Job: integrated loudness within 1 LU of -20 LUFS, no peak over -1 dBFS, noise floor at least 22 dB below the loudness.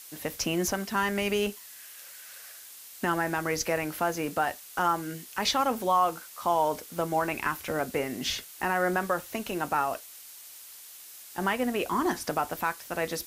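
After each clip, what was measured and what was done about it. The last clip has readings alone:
noise floor -47 dBFS; noise floor target -51 dBFS; loudness -29.0 LUFS; peak -13.5 dBFS; loudness target -20.0 LUFS
-> denoiser 6 dB, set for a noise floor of -47 dBFS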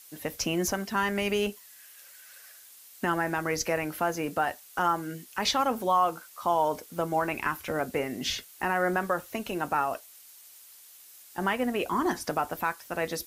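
noise floor -52 dBFS; loudness -29.0 LUFS; peak -13.5 dBFS; loudness target -20.0 LUFS
-> gain +9 dB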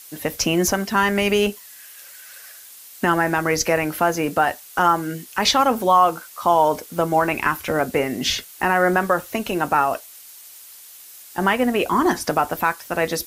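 loudness -20.0 LUFS; peak -4.5 dBFS; noise floor -43 dBFS

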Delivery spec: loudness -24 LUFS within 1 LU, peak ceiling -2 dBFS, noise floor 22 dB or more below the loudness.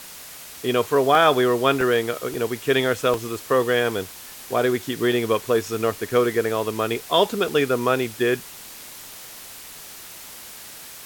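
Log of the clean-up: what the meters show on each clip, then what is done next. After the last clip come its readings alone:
dropouts 7; longest dropout 1.3 ms; noise floor -40 dBFS; noise floor target -44 dBFS; loudness -21.5 LUFS; peak -5.0 dBFS; loudness target -24.0 LUFS
-> interpolate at 1.15/1.81/2.34/3.14/5.12/5.92/7.48, 1.3 ms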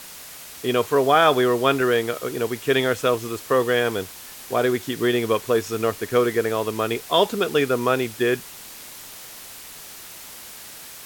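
dropouts 0; noise floor -40 dBFS; noise floor target -44 dBFS
-> noise print and reduce 6 dB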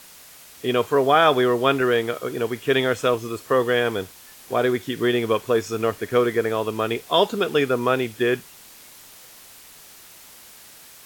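noise floor -46 dBFS; loudness -21.5 LUFS; peak -5.0 dBFS; loudness target -24.0 LUFS
-> gain -2.5 dB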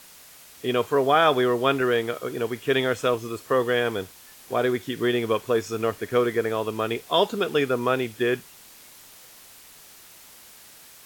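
loudness -24.0 LUFS; peak -7.5 dBFS; noise floor -49 dBFS

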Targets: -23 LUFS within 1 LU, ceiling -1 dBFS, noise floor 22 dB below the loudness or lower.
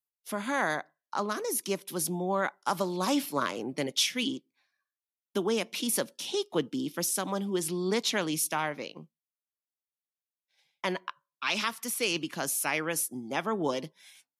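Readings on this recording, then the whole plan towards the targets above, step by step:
loudness -30.5 LUFS; peak -13.5 dBFS; loudness target -23.0 LUFS
-> gain +7.5 dB

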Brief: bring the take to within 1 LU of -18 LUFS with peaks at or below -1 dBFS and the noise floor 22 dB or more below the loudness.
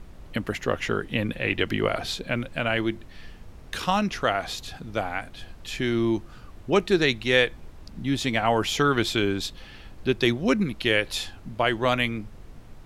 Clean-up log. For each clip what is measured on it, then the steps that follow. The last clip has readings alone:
noise floor -46 dBFS; noise floor target -48 dBFS; loudness -25.5 LUFS; peak -7.5 dBFS; loudness target -18.0 LUFS
-> noise print and reduce 6 dB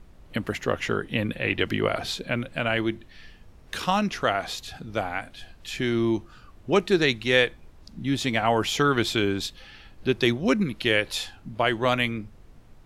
noise floor -51 dBFS; loudness -25.5 LUFS; peak -7.5 dBFS; loudness target -18.0 LUFS
-> gain +7.5 dB; limiter -1 dBFS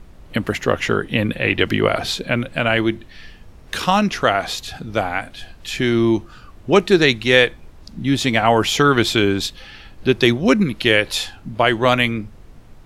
loudness -18.0 LUFS; peak -1.0 dBFS; noise floor -43 dBFS

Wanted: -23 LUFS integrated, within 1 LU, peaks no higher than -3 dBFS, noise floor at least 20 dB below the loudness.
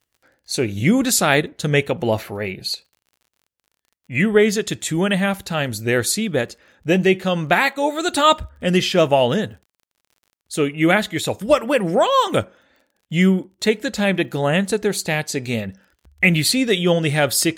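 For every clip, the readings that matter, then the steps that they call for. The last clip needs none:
ticks 34/s; loudness -19.0 LUFS; peak -1.5 dBFS; loudness target -23.0 LUFS
-> de-click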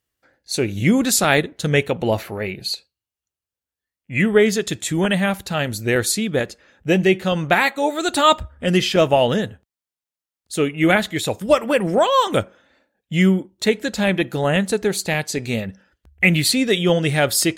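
ticks 0.11/s; loudness -19.0 LUFS; peak -1.5 dBFS; loudness target -23.0 LUFS
-> gain -4 dB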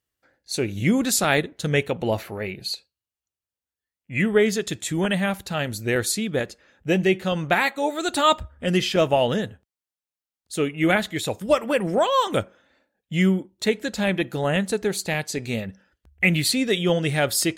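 loudness -23.0 LUFS; peak -5.5 dBFS; noise floor -92 dBFS

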